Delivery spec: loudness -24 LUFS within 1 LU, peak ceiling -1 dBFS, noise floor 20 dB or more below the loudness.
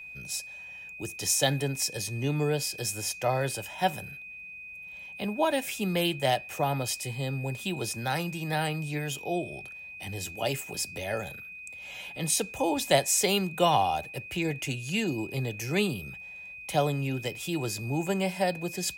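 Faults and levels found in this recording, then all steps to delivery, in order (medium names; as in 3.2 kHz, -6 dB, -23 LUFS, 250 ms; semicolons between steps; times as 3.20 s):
steady tone 2.5 kHz; tone level -41 dBFS; loudness -29.5 LUFS; peak level -9.5 dBFS; loudness target -24.0 LUFS
-> band-stop 2.5 kHz, Q 30; trim +5.5 dB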